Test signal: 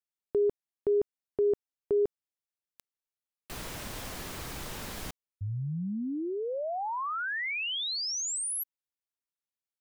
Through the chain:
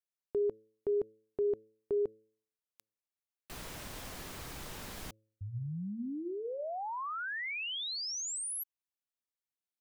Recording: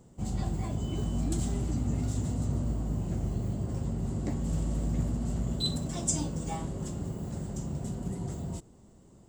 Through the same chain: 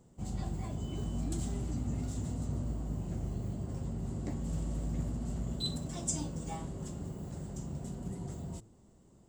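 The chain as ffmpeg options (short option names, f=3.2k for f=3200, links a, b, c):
-af "bandreject=f=109:t=h:w=4,bandreject=f=218:t=h:w=4,bandreject=f=327:t=h:w=4,bandreject=f=436:t=h:w=4,bandreject=f=545:t=h:w=4,volume=-5dB"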